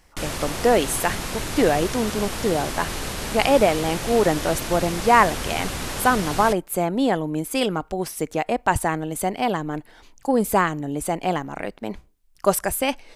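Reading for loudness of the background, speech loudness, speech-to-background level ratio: -29.0 LUFS, -22.5 LUFS, 6.5 dB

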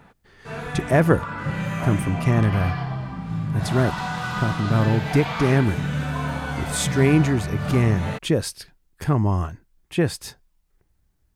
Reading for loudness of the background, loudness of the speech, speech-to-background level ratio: -27.5 LUFS, -22.5 LUFS, 5.0 dB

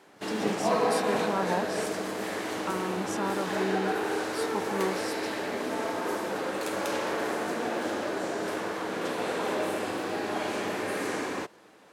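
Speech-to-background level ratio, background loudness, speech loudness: -4.0 dB, -31.0 LUFS, -35.0 LUFS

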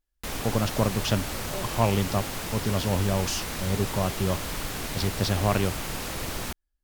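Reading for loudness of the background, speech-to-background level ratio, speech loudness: -32.5 LUFS, 4.5 dB, -28.0 LUFS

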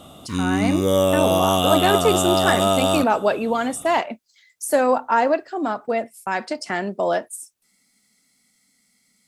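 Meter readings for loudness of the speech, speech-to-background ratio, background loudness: -22.5 LUFS, -3.0 dB, -19.5 LUFS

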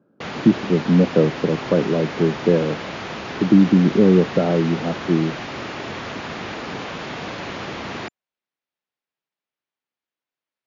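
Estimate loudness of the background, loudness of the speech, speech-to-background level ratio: -30.0 LUFS, -18.5 LUFS, 11.5 dB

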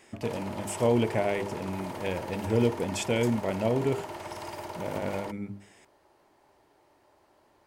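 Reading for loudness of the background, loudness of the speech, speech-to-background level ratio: -39.5 LUFS, -30.0 LUFS, 9.5 dB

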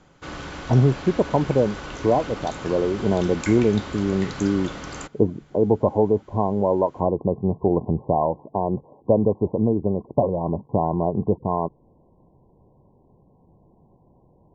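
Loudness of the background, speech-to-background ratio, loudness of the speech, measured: -34.5 LUFS, 12.0 dB, -22.5 LUFS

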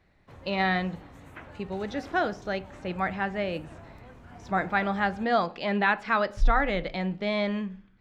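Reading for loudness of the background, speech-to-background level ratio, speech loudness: -48.0 LUFS, 19.5 dB, -28.5 LUFS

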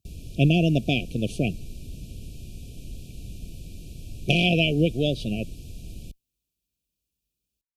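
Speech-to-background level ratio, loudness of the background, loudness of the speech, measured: 18.5 dB, -42.0 LUFS, -23.5 LUFS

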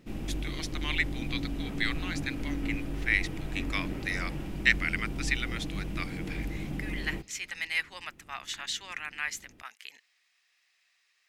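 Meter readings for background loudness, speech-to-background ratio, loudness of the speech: -37.0 LUFS, 3.5 dB, -33.5 LUFS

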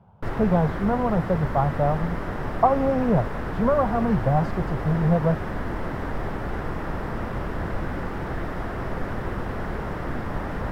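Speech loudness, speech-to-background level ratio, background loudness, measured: -24.0 LUFS, 7.0 dB, -31.0 LUFS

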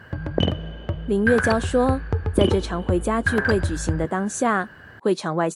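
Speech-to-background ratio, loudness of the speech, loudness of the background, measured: 2.5 dB, -23.5 LUFS, -26.0 LUFS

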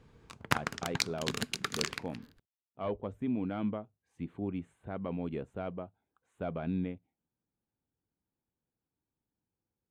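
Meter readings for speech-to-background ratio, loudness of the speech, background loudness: -4.0 dB, -39.0 LUFS, -35.0 LUFS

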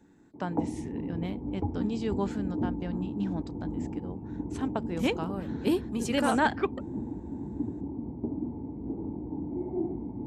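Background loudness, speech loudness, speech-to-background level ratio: -36.0 LUFS, -32.5 LUFS, 3.5 dB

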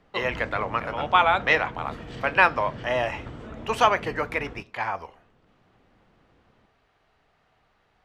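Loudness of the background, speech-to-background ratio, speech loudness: -39.5 LUFS, 15.0 dB, -24.5 LUFS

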